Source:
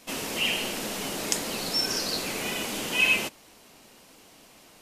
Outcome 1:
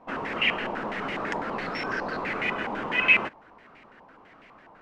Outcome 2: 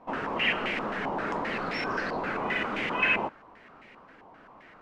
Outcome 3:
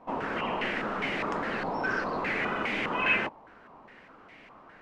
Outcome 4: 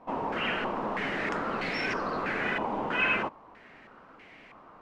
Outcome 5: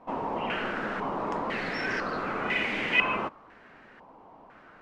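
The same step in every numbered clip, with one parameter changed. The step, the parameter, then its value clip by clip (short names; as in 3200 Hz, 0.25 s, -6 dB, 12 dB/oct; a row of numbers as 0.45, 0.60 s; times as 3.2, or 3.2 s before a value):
stepped low-pass, rate: 12, 7.6, 4.9, 3.1, 2 Hz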